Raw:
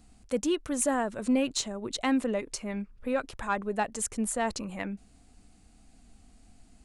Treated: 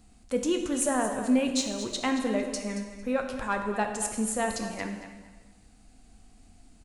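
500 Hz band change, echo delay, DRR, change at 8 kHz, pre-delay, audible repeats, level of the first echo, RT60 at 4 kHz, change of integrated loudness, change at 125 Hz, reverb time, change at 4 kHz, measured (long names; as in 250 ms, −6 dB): +1.5 dB, 226 ms, 3.5 dB, +1.5 dB, 6 ms, 2, −12.0 dB, 1.2 s, +1.5 dB, +1.0 dB, 1.3 s, +1.5 dB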